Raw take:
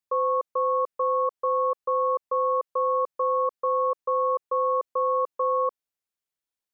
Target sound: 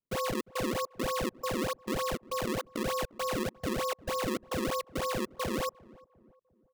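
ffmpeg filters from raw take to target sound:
-filter_complex "[0:a]acrusher=samples=34:mix=1:aa=0.000001:lfo=1:lforange=54.4:lforate=3.3,asplit=2[s0][s1];[s1]adelay=351,lowpass=f=850:p=1,volume=0.0891,asplit=2[s2][s3];[s3]adelay=351,lowpass=f=850:p=1,volume=0.48,asplit=2[s4][s5];[s5]adelay=351,lowpass=f=850:p=1,volume=0.48[s6];[s0][s2][s4][s6]amix=inputs=4:normalize=0,volume=0.398"

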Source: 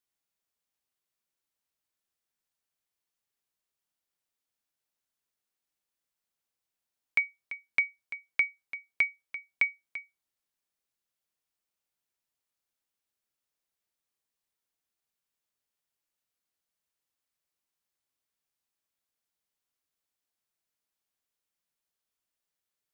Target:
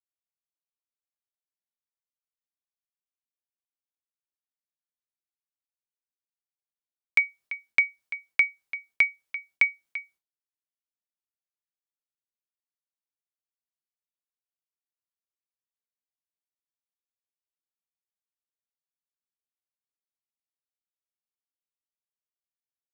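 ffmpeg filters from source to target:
-af "agate=range=0.0224:threshold=0.00141:ratio=3:detection=peak,volume=1.78"

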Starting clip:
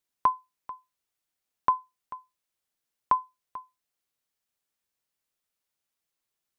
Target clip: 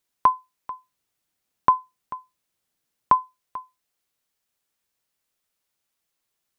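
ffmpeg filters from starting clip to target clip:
-filter_complex "[0:a]asettb=1/sr,asplit=3[s0][s1][s2];[s0]atrim=end=0.724[s3];[s1]atrim=start=0.72:end=3.15,asetpts=PTS-STARTPTS,afade=t=in:d=0.004:c=qsin,afade=t=out:st=2.426:d=0.004:c=qsin,equalizer=f=160:w=0.55:g=5.5[s4];[s2]atrim=start=3.146[s5];[s3][s4]acrossfade=d=0.004:c1=hsin:c2=qsin[s6];[s6][s5]acrossfade=d=0.004:c1=qsin:c2=hsin,volume=1.88"

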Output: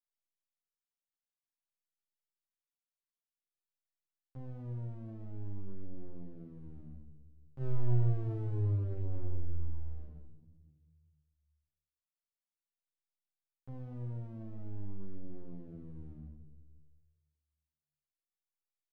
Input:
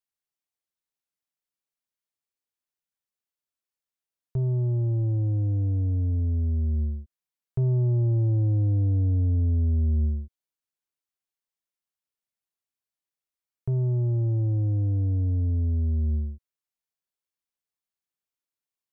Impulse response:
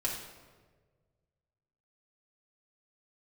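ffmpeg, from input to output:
-filter_complex "[0:a]highpass=f=100:p=1,agate=range=0.316:threshold=0.0631:ratio=16:detection=peak,equalizer=f=300:w=0.34:g=-4.5,aeval=exprs='max(val(0),0)':c=same,asplit=2[s0][s1];[1:a]atrim=start_sample=2205,adelay=36[s2];[s1][s2]afir=irnorm=-1:irlink=0,volume=0.355[s3];[s0][s3]amix=inputs=2:normalize=0,asplit=2[s4][s5];[s5]adelay=10.5,afreqshift=-0.54[s6];[s4][s6]amix=inputs=2:normalize=1,volume=1.33"

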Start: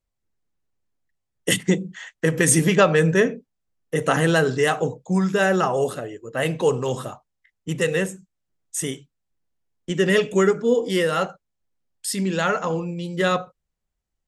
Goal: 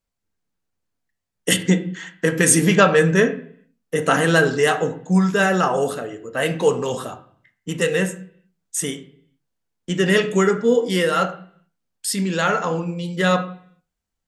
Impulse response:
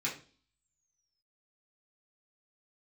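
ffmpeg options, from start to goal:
-filter_complex "[0:a]asplit=2[s0][s1];[1:a]atrim=start_sample=2205,afade=t=out:st=0.33:d=0.01,atrim=end_sample=14994,asetrate=27783,aresample=44100[s2];[s1][s2]afir=irnorm=-1:irlink=0,volume=0.224[s3];[s0][s3]amix=inputs=2:normalize=0,volume=1.12"

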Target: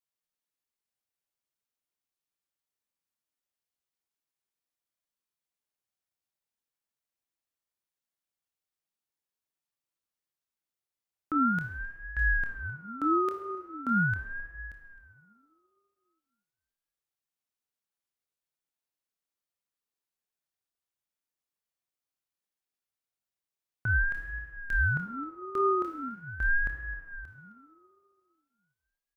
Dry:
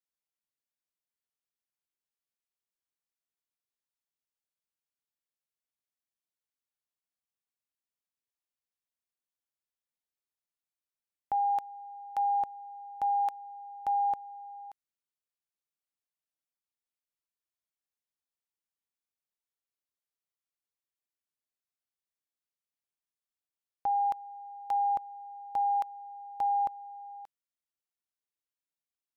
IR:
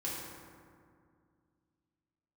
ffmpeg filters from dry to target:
-filter_complex "[0:a]asplit=2[s0][s1];[s1]adelay=262.4,volume=0.141,highshelf=f=4000:g=-5.9[s2];[s0][s2]amix=inputs=2:normalize=0,asplit=2[s3][s4];[1:a]atrim=start_sample=2205,adelay=25[s5];[s4][s5]afir=irnorm=-1:irlink=0,volume=0.562[s6];[s3][s6]amix=inputs=2:normalize=0,aeval=exprs='val(0)*sin(2*PI*640*n/s+640*0.35/0.41*sin(2*PI*0.41*n/s))':c=same,volume=1.26"

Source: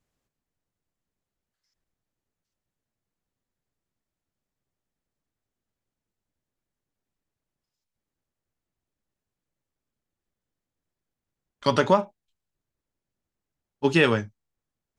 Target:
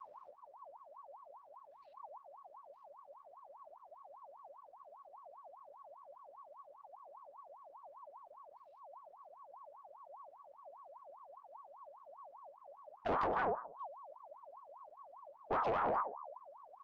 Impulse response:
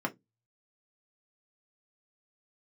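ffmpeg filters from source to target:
-filter_complex "[0:a]acrossover=split=98|1000[s0][s1][s2];[s0]acompressor=threshold=0.00447:ratio=4[s3];[s1]acompressor=threshold=0.1:ratio=4[s4];[s2]acompressor=threshold=0.0398:ratio=4[s5];[s3][s4][s5]amix=inputs=3:normalize=0,atempo=0.89,lowshelf=f=430:g=8.5,asplit=2[s6][s7];[s7]adelay=64,lowpass=f=1500:p=1,volume=0.141,asplit=2[s8][s9];[s9]adelay=64,lowpass=f=1500:p=1,volume=0.34,asplit=2[s10][s11];[s11]adelay=64,lowpass=f=1500:p=1,volume=0.34[s12];[s6][s8][s10][s12]amix=inputs=4:normalize=0,asplit=2[s13][s14];[1:a]atrim=start_sample=2205,adelay=27[s15];[s14][s15]afir=irnorm=-1:irlink=0,volume=0.188[s16];[s13][s16]amix=inputs=2:normalize=0,acompressor=threshold=0.0158:ratio=4,aemphasis=mode=reproduction:type=bsi,aeval=exprs='(tanh(79.4*val(0)+0.05)-tanh(0.05))/79.4':c=same,asetrate=28595,aresample=44100,atempo=1.54221,aeval=exprs='val(0)*sin(2*PI*840*n/s+840*0.35/5*sin(2*PI*5*n/s))':c=same,volume=2.82"

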